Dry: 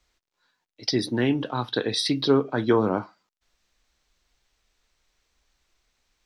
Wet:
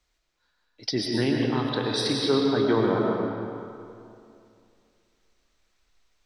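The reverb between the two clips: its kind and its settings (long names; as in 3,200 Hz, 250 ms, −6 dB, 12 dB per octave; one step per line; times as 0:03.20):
comb and all-pass reverb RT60 2.5 s, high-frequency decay 0.75×, pre-delay 75 ms, DRR −1 dB
level −3.5 dB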